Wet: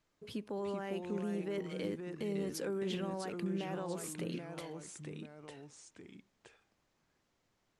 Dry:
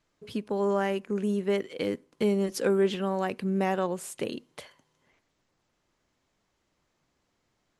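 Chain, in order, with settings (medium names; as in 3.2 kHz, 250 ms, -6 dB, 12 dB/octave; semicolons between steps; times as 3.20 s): peak limiter -26 dBFS, peak gain reduction 11.5 dB; ever faster or slower copies 340 ms, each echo -2 st, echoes 2, each echo -6 dB; trim -4.5 dB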